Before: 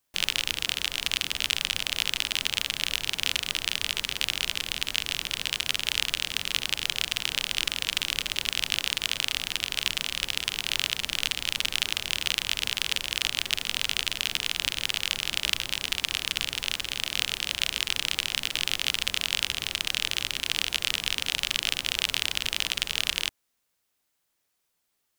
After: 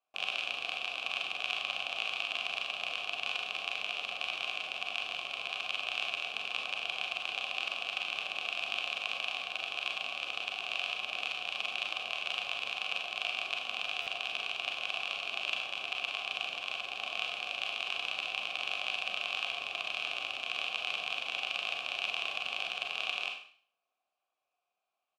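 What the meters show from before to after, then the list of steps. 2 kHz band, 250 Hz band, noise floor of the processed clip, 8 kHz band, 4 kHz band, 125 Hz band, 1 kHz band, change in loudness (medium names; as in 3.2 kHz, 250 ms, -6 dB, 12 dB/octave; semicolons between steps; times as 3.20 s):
-4.0 dB, -14.0 dB, under -85 dBFS, -21.0 dB, -9.5 dB, under -20 dB, +1.0 dB, -7.5 dB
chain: vowel filter a; treble shelf 9.6 kHz -4.5 dB; delay 101 ms -17.5 dB; Schroeder reverb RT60 0.48 s, combs from 30 ms, DRR 2 dB; buffer glitch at 14.01 s, samples 512, times 4; trim +6.5 dB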